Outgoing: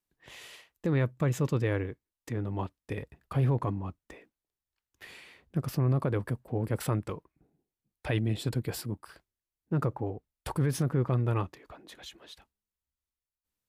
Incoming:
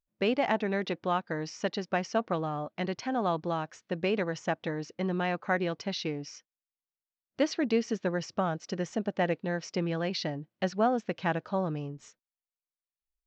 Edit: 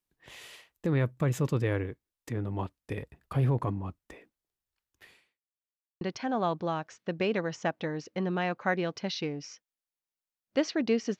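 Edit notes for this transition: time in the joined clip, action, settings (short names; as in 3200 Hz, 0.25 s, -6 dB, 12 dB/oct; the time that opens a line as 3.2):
outgoing
4.88–5.42 fade out quadratic
5.42–6.01 mute
6.01 switch to incoming from 2.84 s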